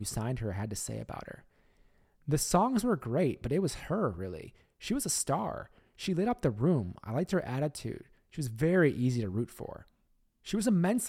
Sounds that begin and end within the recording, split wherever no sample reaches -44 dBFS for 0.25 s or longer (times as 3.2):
2.28–4.49
4.82–5.64
5.99–8.01
8.34–9.82